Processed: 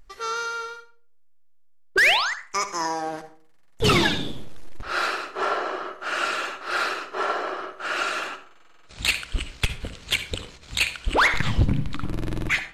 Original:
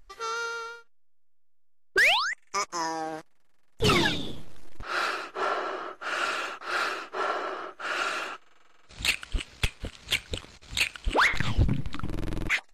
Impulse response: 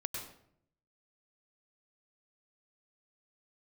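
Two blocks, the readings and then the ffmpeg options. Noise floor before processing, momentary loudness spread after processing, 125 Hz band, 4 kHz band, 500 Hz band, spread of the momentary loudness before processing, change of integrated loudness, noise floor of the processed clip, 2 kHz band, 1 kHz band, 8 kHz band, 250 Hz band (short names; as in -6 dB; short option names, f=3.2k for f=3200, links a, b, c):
-54 dBFS, 14 LU, +4.0 dB, +3.5 dB, +3.5 dB, 14 LU, +3.5 dB, -51 dBFS, +3.5 dB, +3.5 dB, +3.5 dB, +4.0 dB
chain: -filter_complex "[0:a]asplit=2[a][b];[1:a]atrim=start_sample=2205,asetrate=74970,aresample=44100[c];[b][c]afir=irnorm=-1:irlink=0,volume=-0.5dB[d];[a][d]amix=inputs=2:normalize=0"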